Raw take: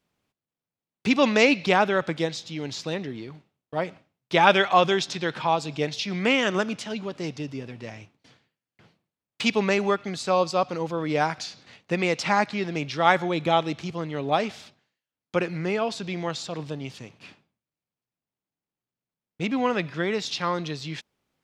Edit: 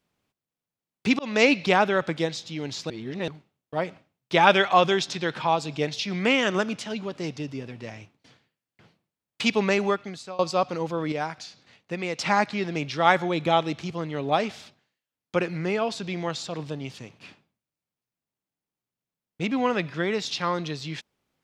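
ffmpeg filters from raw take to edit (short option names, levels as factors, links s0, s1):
-filter_complex "[0:a]asplit=7[s0][s1][s2][s3][s4][s5][s6];[s0]atrim=end=1.19,asetpts=PTS-STARTPTS,afade=t=out:st=1.186:d=0.004:c=hsin[s7];[s1]atrim=start=1.19:end=2.902,asetpts=PTS-STARTPTS,afade=t=in:d=0.25[s8];[s2]atrim=start=2.898:end=3.282,asetpts=PTS-STARTPTS,areverse[s9];[s3]atrim=start=3.278:end=10.39,asetpts=PTS-STARTPTS,afade=t=out:st=6.572:d=0.54:silence=0.0707946[s10];[s4]atrim=start=10.39:end=11.122,asetpts=PTS-STARTPTS,afade=t=in:d=0.004:c=hsin:silence=0.0707946[s11];[s5]atrim=start=11.118:end=12.192,asetpts=PTS-STARTPTS,volume=0.501[s12];[s6]atrim=start=12.188[s13];[s7][s8]concat=n=2:v=0:a=1[s14];[s14][s9]acrossfade=d=0.004:c1=hsin:c2=hsin[s15];[s10][s11]concat=n=2:v=0:a=1[s16];[s15][s16]acrossfade=d=0.004:c1=hsin:c2=hsin[s17];[s17][s12]acrossfade=d=0.004:c1=hsin:c2=hsin[s18];[s18][s13]acrossfade=d=0.004:c1=hsin:c2=hsin"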